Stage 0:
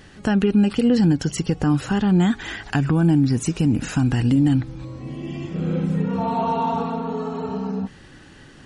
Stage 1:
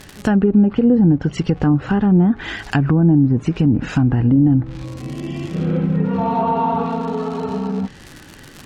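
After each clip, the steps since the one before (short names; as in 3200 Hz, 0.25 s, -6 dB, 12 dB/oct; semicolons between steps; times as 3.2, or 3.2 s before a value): crackle 150/s -28 dBFS; treble ducked by the level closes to 740 Hz, closed at -14 dBFS; gain +4 dB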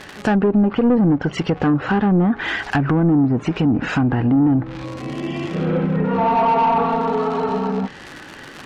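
overdrive pedal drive 18 dB, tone 1800 Hz, clips at -5 dBFS; gain -2.5 dB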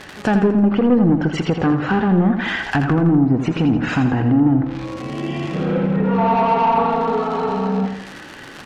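feedback echo 83 ms, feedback 47%, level -8 dB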